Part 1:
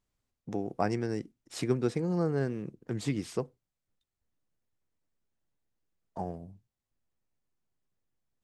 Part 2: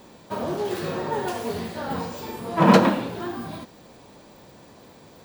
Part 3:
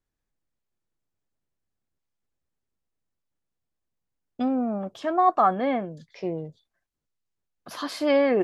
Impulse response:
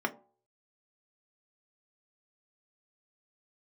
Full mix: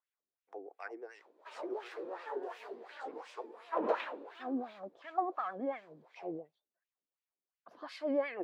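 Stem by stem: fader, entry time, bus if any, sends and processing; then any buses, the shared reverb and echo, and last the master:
-3.5 dB, 0.00 s, send -18 dB, high-pass 440 Hz 24 dB/octave
-7.0 dB, 1.15 s, no send, high-pass 350 Hz 24 dB/octave
-5.0 dB, 0.00 s, no send, none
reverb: on, RT60 0.45 s, pre-delay 3 ms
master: bass shelf 380 Hz -3.5 dB; vibrato 9.1 Hz 71 cents; wah-wah 2.8 Hz 280–2700 Hz, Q 2.3

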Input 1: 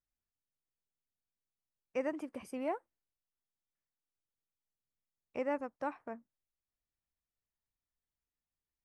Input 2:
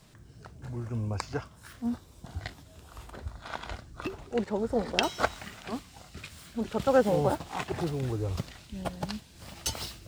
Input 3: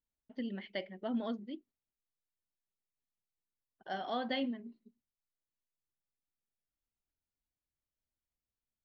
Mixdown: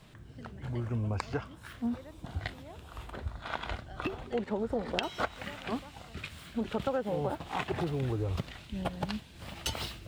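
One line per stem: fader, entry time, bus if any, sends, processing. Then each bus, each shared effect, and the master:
-14.5 dB, 0.00 s, no send, none
+2.0 dB, 0.00 s, no send, resonant high shelf 4.2 kHz -6 dB, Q 1.5
-7.5 dB, 0.00 s, no send, compression, threshold -40 dBFS, peak gain reduction 9.5 dB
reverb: none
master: compression 8:1, threshold -28 dBFS, peak gain reduction 14 dB

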